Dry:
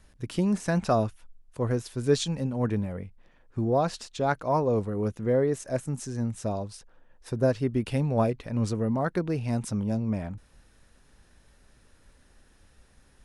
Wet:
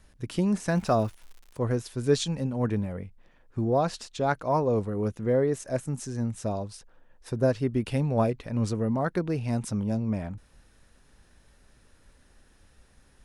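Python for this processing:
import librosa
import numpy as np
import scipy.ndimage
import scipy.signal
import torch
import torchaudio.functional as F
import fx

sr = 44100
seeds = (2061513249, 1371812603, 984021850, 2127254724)

y = fx.dmg_crackle(x, sr, seeds[0], per_s=fx.line((0.69, 260.0), (1.62, 97.0)), level_db=-41.0, at=(0.69, 1.62), fade=0.02)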